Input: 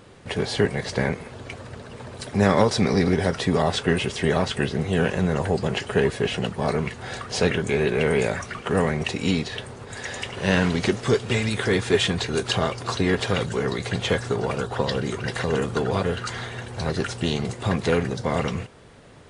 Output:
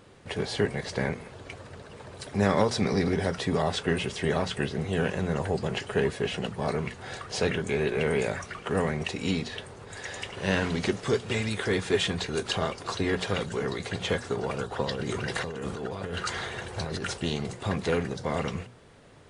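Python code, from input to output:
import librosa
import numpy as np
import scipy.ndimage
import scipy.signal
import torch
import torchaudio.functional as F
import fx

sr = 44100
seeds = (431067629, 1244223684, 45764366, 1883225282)

y = fx.hum_notches(x, sr, base_hz=60, count=4)
y = fx.over_compress(y, sr, threshold_db=-29.0, ratio=-1.0, at=(14.91, 17.17), fade=0.02)
y = y * librosa.db_to_amplitude(-5.0)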